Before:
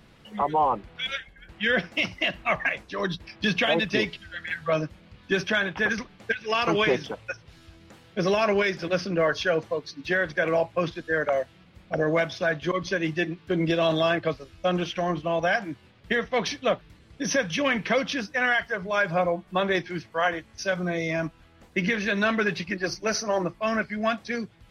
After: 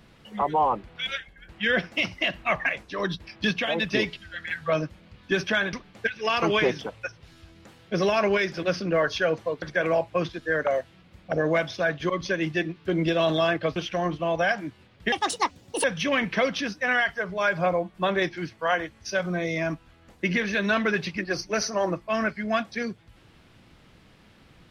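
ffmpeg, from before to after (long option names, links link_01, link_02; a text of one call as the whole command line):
ffmpeg -i in.wav -filter_complex "[0:a]asplit=8[link_01][link_02][link_03][link_04][link_05][link_06][link_07][link_08];[link_01]atrim=end=3.512[link_09];[link_02]atrim=start=3.508:end=3.802,asetpts=PTS-STARTPTS,volume=-4dB[link_10];[link_03]atrim=start=3.798:end=5.732[link_11];[link_04]atrim=start=5.978:end=9.872[link_12];[link_05]atrim=start=10.238:end=14.382[link_13];[link_06]atrim=start=14.798:end=16.164[link_14];[link_07]atrim=start=16.16:end=17.37,asetpts=PTS-STARTPTS,asetrate=74088,aresample=44100,atrim=end_sample=31762,asetpts=PTS-STARTPTS[link_15];[link_08]atrim=start=17.366[link_16];[link_09][link_10]acrossfade=duration=0.004:curve1=hsin:curve2=hsin[link_17];[link_17][link_11]acrossfade=duration=0.004:curve1=hsin:curve2=hsin[link_18];[link_18][link_12]acrossfade=duration=0.004:curve1=hsin:curve2=hsin[link_19];[link_19][link_13]acrossfade=duration=0.004:curve1=hsin:curve2=hsin[link_20];[link_20][link_14]acrossfade=duration=0.004:curve1=hsin:curve2=hsin[link_21];[link_21][link_15]acrossfade=duration=0.004:curve1=hsin:curve2=hsin[link_22];[link_22][link_16]acrossfade=duration=0.004:curve1=hsin:curve2=hsin" out.wav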